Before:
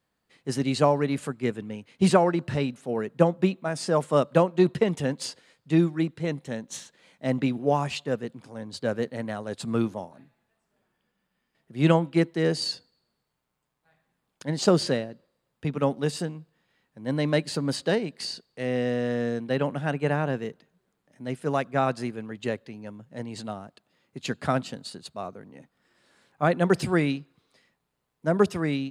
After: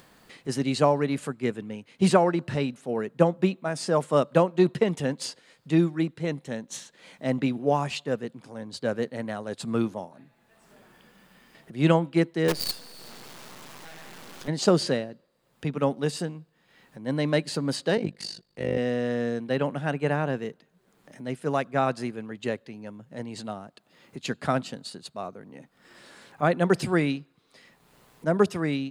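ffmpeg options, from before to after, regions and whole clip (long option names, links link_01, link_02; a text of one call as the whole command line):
ffmpeg -i in.wav -filter_complex "[0:a]asettb=1/sr,asplit=3[link_01][link_02][link_03];[link_01]atrim=end=12.484[link_04];[link_02]atrim=start=12.48:end=14.48,asetpts=PTS-STARTPTS,afade=type=in:duration=0.004:curve=qsin,afade=type=out:start_time=1.996:duration=0.004:curve=qsin,aeval=exprs='val(0)+0.5*0.0158*sgn(val(0))':channel_layout=same,highpass=140,lowpass=6300,acrusher=bits=5:dc=4:mix=0:aa=0.000001[link_05];[link_03]atrim=start=14.476[link_06];[link_04][link_05]acrossfade=duration=0.004:curve1=hsin:curve2=qsin[link_07];[link_07][link_06]acrossfade=duration=0.004:curve1=qsin:curve2=hsin,asettb=1/sr,asplit=3[link_08][link_09][link_10];[link_08]atrim=end=17.974[link_11];[link_09]atrim=start=17.97:end=18.78,asetpts=PTS-STARTPTS,afade=type=in:duration=0.004:curve=qsin,afade=type=out:start_time=0.806:duration=0.004:curve=qsin,lowshelf=frequency=290:gain=9,aecho=1:1:5.8:0.44,atrim=end_sample=35721,tremolo=f=50:d=0.889[link_12];[link_10]atrim=start=18.776[link_13];[link_11][link_12]acrossfade=duration=0.004:curve1=hsin:curve2=qsin[link_14];[link_14][link_13]acrossfade=duration=0.004:curve1=qsin:curve2=hsin,equalizer=frequency=73:width=1.5:gain=-6.5,acompressor=mode=upward:threshold=-38dB:ratio=2.5" out.wav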